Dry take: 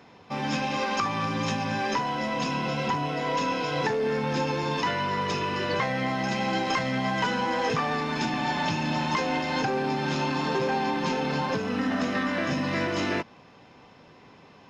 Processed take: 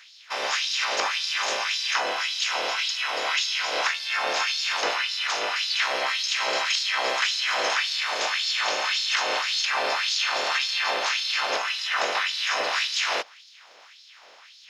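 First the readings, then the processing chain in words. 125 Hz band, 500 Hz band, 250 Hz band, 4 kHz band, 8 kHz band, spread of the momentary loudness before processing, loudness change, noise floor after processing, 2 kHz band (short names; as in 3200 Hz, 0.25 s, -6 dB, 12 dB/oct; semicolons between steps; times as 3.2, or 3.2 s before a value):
under -30 dB, -3.5 dB, -20.5 dB, +11.0 dB, +11.0 dB, 2 LU, +3.5 dB, -51 dBFS, +5.5 dB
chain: spectral limiter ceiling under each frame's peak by 24 dB; LFO high-pass sine 1.8 Hz 510–4300 Hz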